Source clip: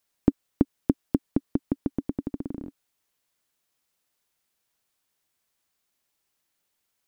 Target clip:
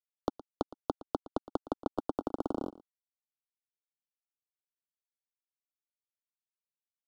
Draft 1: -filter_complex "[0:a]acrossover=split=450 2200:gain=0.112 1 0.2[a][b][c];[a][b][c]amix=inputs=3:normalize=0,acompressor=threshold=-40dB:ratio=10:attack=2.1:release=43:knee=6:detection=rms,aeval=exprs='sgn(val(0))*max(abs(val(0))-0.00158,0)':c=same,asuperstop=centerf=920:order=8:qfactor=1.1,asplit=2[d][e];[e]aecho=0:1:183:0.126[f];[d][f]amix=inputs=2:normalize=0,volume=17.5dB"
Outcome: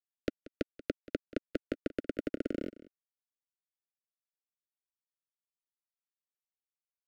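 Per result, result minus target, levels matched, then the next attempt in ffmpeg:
1000 Hz band -15.0 dB; echo 68 ms late
-filter_complex "[0:a]acrossover=split=450 2200:gain=0.112 1 0.2[a][b][c];[a][b][c]amix=inputs=3:normalize=0,acompressor=threshold=-40dB:ratio=10:attack=2.1:release=43:knee=6:detection=rms,aeval=exprs='sgn(val(0))*max(abs(val(0))-0.00158,0)':c=same,asuperstop=centerf=2100:order=8:qfactor=1.1,asplit=2[d][e];[e]aecho=0:1:183:0.126[f];[d][f]amix=inputs=2:normalize=0,volume=17.5dB"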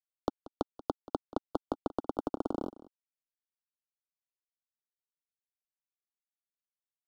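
echo 68 ms late
-filter_complex "[0:a]acrossover=split=450 2200:gain=0.112 1 0.2[a][b][c];[a][b][c]amix=inputs=3:normalize=0,acompressor=threshold=-40dB:ratio=10:attack=2.1:release=43:knee=6:detection=rms,aeval=exprs='sgn(val(0))*max(abs(val(0))-0.00158,0)':c=same,asuperstop=centerf=2100:order=8:qfactor=1.1,asplit=2[d][e];[e]aecho=0:1:115:0.126[f];[d][f]amix=inputs=2:normalize=0,volume=17.5dB"

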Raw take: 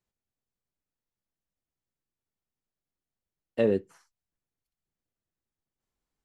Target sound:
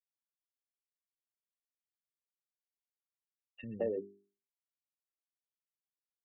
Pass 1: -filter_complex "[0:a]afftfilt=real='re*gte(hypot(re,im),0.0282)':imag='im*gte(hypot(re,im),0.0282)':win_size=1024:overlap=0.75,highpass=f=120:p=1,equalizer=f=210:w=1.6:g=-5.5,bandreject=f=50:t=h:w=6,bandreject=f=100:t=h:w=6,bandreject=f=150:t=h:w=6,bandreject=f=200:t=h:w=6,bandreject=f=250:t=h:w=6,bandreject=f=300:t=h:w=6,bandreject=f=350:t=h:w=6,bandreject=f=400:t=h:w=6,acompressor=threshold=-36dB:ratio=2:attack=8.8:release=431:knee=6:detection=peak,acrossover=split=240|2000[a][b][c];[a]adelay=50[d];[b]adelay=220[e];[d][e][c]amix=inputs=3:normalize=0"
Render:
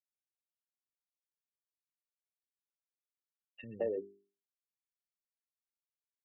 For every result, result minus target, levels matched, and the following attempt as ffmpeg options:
125 Hz band -4.5 dB; 250 Hz band -4.0 dB
-filter_complex "[0:a]afftfilt=real='re*gte(hypot(re,im),0.0282)':imag='im*gte(hypot(re,im),0.0282)':win_size=1024:overlap=0.75,equalizer=f=210:w=1.6:g=-5.5,bandreject=f=50:t=h:w=6,bandreject=f=100:t=h:w=6,bandreject=f=150:t=h:w=6,bandreject=f=200:t=h:w=6,bandreject=f=250:t=h:w=6,bandreject=f=300:t=h:w=6,bandreject=f=350:t=h:w=6,bandreject=f=400:t=h:w=6,acompressor=threshold=-36dB:ratio=2:attack=8.8:release=431:knee=6:detection=peak,acrossover=split=240|2000[a][b][c];[a]adelay=50[d];[b]adelay=220[e];[d][e][c]amix=inputs=3:normalize=0"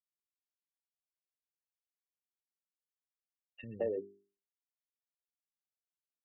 250 Hz band -2.5 dB
-filter_complex "[0:a]afftfilt=real='re*gte(hypot(re,im),0.0282)':imag='im*gte(hypot(re,im),0.0282)':win_size=1024:overlap=0.75,bandreject=f=50:t=h:w=6,bandreject=f=100:t=h:w=6,bandreject=f=150:t=h:w=6,bandreject=f=200:t=h:w=6,bandreject=f=250:t=h:w=6,bandreject=f=300:t=h:w=6,bandreject=f=350:t=h:w=6,bandreject=f=400:t=h:w=6,acompressor=threshold=-36dB:ratio=2:attack=8.8:release=431:knee=6:detection=peak,acrossover=split=240|2000[a][b][c];[a]adelay=50[d];[b]adelay=220[e];[d][e][c]amix=inputs=3:normalize=0"

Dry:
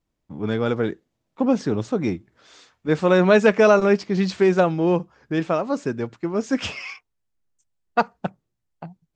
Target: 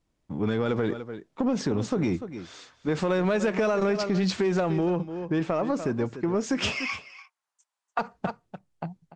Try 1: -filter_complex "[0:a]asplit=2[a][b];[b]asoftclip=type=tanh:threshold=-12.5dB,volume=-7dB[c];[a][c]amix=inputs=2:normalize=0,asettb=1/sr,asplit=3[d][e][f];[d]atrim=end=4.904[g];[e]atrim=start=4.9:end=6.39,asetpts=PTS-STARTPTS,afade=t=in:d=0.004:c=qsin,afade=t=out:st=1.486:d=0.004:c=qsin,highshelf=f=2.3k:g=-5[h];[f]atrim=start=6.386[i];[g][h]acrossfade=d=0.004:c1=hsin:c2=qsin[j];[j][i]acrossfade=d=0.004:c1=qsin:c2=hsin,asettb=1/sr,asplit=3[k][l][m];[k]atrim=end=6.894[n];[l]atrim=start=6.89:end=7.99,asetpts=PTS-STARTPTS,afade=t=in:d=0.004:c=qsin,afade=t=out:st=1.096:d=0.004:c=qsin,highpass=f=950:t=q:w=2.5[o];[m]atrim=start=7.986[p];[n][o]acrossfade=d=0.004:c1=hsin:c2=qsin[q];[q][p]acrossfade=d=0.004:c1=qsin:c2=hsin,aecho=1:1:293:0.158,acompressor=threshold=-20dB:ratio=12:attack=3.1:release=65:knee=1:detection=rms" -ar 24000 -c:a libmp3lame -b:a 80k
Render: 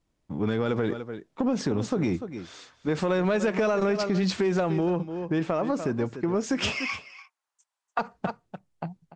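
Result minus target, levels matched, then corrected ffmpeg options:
soft clip: distortion -8 dB
-filter_complex "[0:a]asplit=2[a][b];[b]asoftclip=type=tanh:threshold=-21.5dB,volume=-7dB[c];[a][c]amix=inputs=2:normalize=0,asettb=1/sr,asplit=3[d][e][f];[d]atrim=end=4.904[g];[e]atrim=start=4.9:end=6.39,asetpts=PTS-STARTPTS,afade=t=in:d=0.004:c=qsin,afade=t=out:st=1.486:d=0.004:c=qsin,highshelf=f=2.3k:g=-5[h];[f]atrim=start=6.386[i];[g][h]acrossfade=d=0.004:c1=hsin:c2=qsin[j];[j][i]acrossfade=d=0.004:c1=qsin:c2=hsin,asettb=1/sr,asplit=3[k][l][m];[k]atrim=end=6.894[n];[l]atrim=start=6.89:end=7.99,asetpts=PTS-STARTPTS,afade=t=in:d=0.004:c=qsin,afade=t=out:st=1.096:d=0.004:c=qsin,highpass=f=950:t=q:w=2.5[o];[m]atrim=start=7.986[p];[n][o]acrossfade=d=0.004:c1=hsin:c2=qsin[q];[q][p]acrossfade=d=0.004:c1=qsin:c2=hsin,aecho=1:1:293:0.158,acompressor=threshold=-20dB:ratio=12:attack=3.1:release=65:knee=1:detection=rms" -ar 24000 -c:a libmp3lame -b:a 80k

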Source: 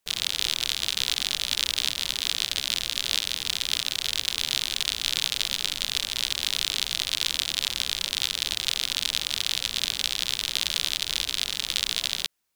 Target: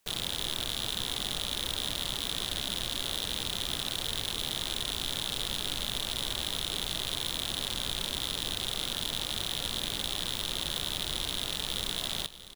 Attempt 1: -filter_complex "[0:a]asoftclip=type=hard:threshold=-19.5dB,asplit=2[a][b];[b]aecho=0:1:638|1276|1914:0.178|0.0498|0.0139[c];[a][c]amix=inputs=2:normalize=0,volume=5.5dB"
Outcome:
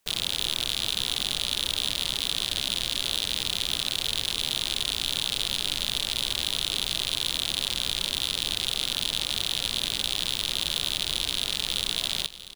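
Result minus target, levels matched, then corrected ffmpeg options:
hard clip: distortion -5 dB
-filter_complex "[0:a]asoftclip=type=hard:threshold=-27.5dB,asplit=2[a][b];[b]aecho=0:1:638|1276|1914:0.178|0.0498|0.0139[c];[a][c]amix=inputs=2:normalize=0,volume=5.5dB"

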